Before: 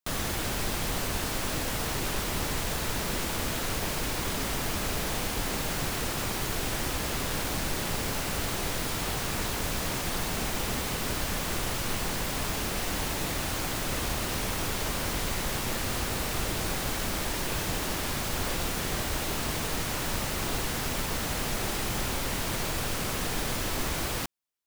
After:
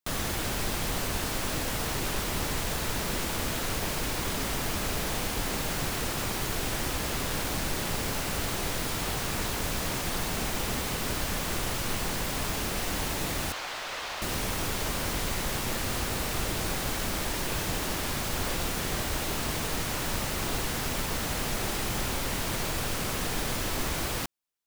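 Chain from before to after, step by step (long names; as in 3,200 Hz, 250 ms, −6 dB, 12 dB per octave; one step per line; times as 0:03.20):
0:13.52–0:14.22: three-way crossover with the lows and the highs turned down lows −21 dB, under 520 Hz, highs −15 dB, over 5,700 Hz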